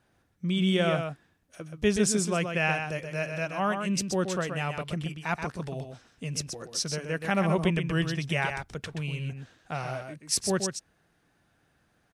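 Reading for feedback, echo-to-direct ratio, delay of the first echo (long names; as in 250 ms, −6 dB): repeats not evenly spaced, −6.5 dB, 127 ms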